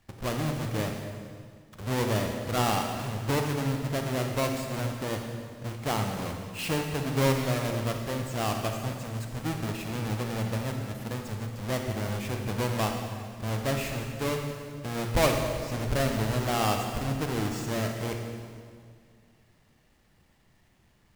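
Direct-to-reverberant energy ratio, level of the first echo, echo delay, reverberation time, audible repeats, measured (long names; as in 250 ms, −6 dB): 3.0 dB, no echo audible, no echo audible, 2.1 s, no echo audible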